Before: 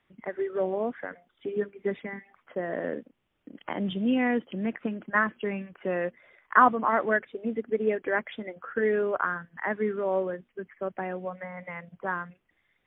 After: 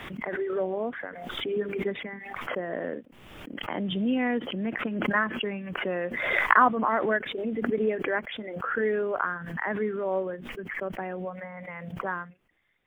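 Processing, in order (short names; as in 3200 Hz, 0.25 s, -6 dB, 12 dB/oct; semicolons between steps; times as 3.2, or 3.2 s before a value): backwards sustainer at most 37 dB/s; gain -1.5 dB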